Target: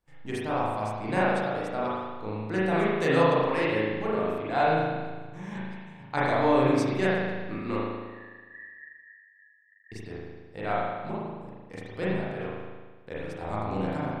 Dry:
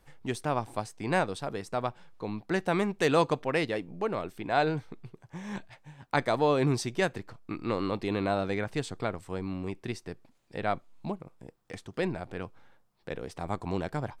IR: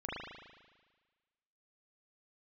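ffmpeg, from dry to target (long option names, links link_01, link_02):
-filter_complex "[0:a]agate=range=-13dB:threshold=-52dB:ratio=16:detection=peak,asettb=1/sr,asplit=3[link_01][link_02][link_03];[link_01]atrim=end=7.764[link_04];[link_02]atrim=start=7.76:end=9.92,asetpts=PTS-STARTPTS,afade=type=in:duration=0.004:curve=qsin,afade=type=out:start_time=2.156:duration=0.004:curve=qsin,asuperpass=centerf=1800:order=12:qfactor=7.2[link_05];[link_03]atrim=start=9.916[link_06];[link_04][link_05]acrossfade=duration=0.004:curve1=hsin:curve2=qsin[link_07];[link_07][link_06]acrossfade=duration=0.004:curve1=qsin:curve2=hsin[link_08];[1:a]atrim=start_sample=2205[link_09];[link_08][link_09]afir=irnorm=-1:irlink=0"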